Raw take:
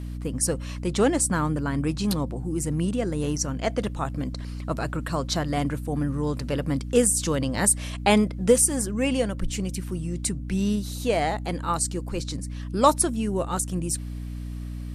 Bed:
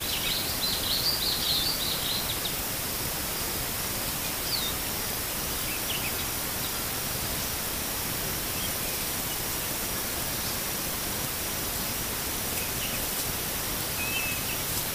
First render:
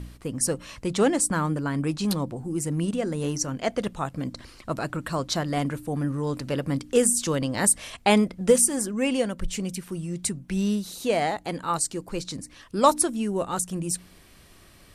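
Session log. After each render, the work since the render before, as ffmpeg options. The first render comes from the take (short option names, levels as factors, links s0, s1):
-af "bandreject=f=60:t=h:w=4,bandreject=f=120:t=h:w=4,bandreject=f=180:t=h:w=4,bandreject=f=240:t=h:w=4,bandreject=f=300:t=h:w=4"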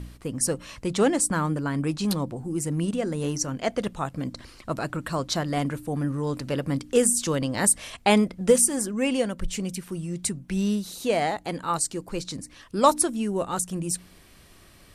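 -af anull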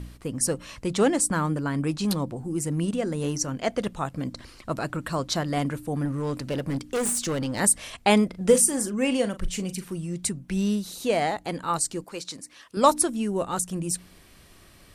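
-filter_complex "[0:a]asettb=1/sr,asplit=3[s0][s1][s2];[s0]atrim=end=6.054[s3];[s1]atrim=start=6.05:end=7.6,asetpts=PTS-STARTPTS,afade=t=in:d=0.004:c=qsin,afade=t=out:st=1.546:d=0.004:c=qsin,asoftclip=type=hard:threshold=0.0708[s4];[s2]atrim=start=7.596[s5];[s3][s4]acrossfade=d=0.004:c1=hsin:c2=qsin[s6];[s6][s5]acrossfade=d=0.004:c1=qsin:c2=hsin,asettb=1/sr,asplit=3[s7][s8][s9];[s7]atrim=end=8.294[s10];[s8]atrim=start=8.29:end=9.94,asetpts=PTS-STARTPTS,afade=t=in:d=0.004:c=qsin,afade=t=out:st=1.646:d=0.004:c=qsin,asplit=2[s11][s12];[s12]adelay=39,volume=0.266[s13];[s11][s13]amix=inputs=2:normalize=0,atrim=end_sample=72765[s14];[s9]atrim=start=9.936[s15];[s10][s14]acrossfade=d=0.004:c1=hsin:c2=qsin[s16];[s16][s15]acrossfade=d=0.004:c1=qsin:c2=hsin,asettb=1/sr,asplit=3[s17][s18][s19];[s17]atrim=end=12.044[s20];[s18]atrim=start=12.04:end=12.77,asetpts=PTS-STARTPTS,afade=t=in:d=0.004:c=qsin,afade=t=out:st=0.726:d=0.004:c=qsin,highpass=f=560:p=1[s21];[s19]atrim=start=12.766[s22];[s20][s21]acrossfade=d=0.004:c1=hsin:c2=qsin[s23];[s23][s22]acrossfade=d=0.004:c1=qsin:c2=hsin"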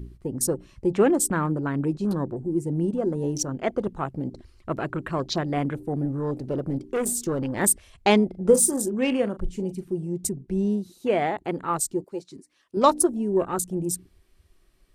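-af "afwtdn=0.0158,equalizer=f=370:w=5.6:g=9"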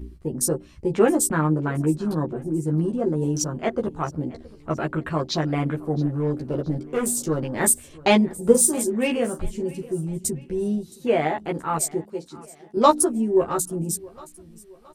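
-filter_complex "[0:a]asplit=2[s0][s1];[s1]adelay=13,volume=0.794[s2];[s0][s2]amix=inputs=2:normalize=0,aecho=1:1:670|1340|2010:0.0841|0.0353|0.0148"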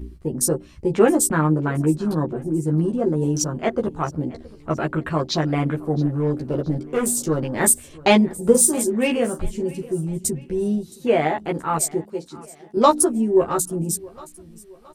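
-af "volume=1.33,alimiter=limit=0.708:level=0:latency=1"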